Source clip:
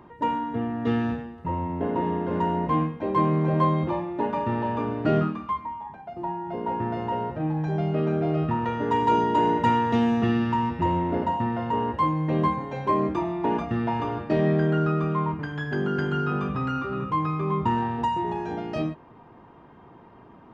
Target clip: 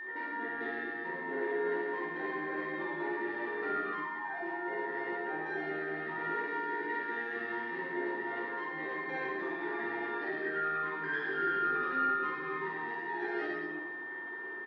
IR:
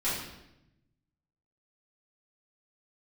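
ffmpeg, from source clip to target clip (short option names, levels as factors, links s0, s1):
-filter_complex "[0:a]acrossover=split=2600[s0][s1];[s1]acompressor=threshold=0.00251:ratio=4:attack=1:release=60[s2];[s0][s2]amix=inputs=2:normalize=0,aemphasis=mode=production:type=riaa,acompressor=threshold=0.0141:ratio=5,asoftclip=type=hard:threshold=0.0211,atempo=1.4,highpass=f=220:w=0.5412,highpass=f=220:w=1.3066,equalizer=f=240:t=q:w=4:g=-10,equalizer=f=370:t=q:w=4:g=8,equalizer=f=600:t=q:w=4:g=-6,equalizer=f=1000:t=q:w=4:g=-7,equalizer=f=1800:t=q:w=4:g=9,equalizer=f=2800:t=q:w=4:g=-8,lowpass=f=3900:w=0.5412,lowpass=f=3900:w=1.3066,aecho=1:1:50|112.5|190.6|288.3|410.4:0.631|0.398|0.251|0.158|0.1[s3];[1:a]atrim=start_sample=2205[s4];[s3][s4]afir=irnorm=-1:irlink=0,aeval=exprs='val(0)+0.02*sin(2*PI*1800*n/s)':c=same,volume=0.501"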